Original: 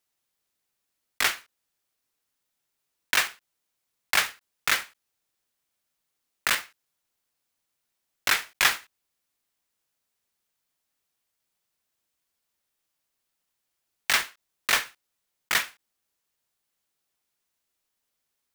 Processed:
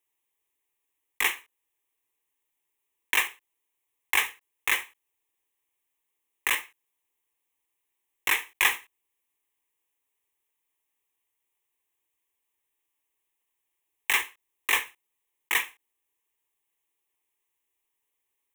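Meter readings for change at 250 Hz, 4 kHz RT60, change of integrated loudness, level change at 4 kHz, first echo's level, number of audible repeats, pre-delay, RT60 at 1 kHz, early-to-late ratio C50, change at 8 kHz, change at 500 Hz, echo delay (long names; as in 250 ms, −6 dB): −3.5 dB, no reverb audible, −1.0 dB, −4.0 dB, no echo audible, no echo audible, no reverb audible, no reverb audible, no reverb audible, −3.0 dB, −4.0 dB, no echo audible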